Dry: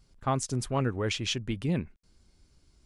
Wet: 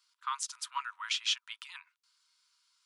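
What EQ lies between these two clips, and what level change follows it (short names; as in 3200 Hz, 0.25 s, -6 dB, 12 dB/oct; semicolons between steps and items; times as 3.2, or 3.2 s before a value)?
rippled Chebyshev high-pass 940 Hz, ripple 6 dB; +2.5 dB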